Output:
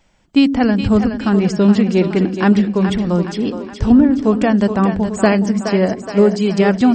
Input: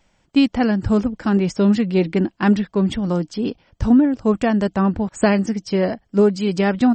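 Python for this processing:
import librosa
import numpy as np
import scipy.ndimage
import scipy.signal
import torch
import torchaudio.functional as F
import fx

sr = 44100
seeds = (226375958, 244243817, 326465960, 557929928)

y = fx.echo_split(x, sr, split_hz=340.0, low_ms=89, high_ms=420, feedback_pct=52, wet_db=-8.0)
y = y * 10.0 ** (3.0 / 20.0)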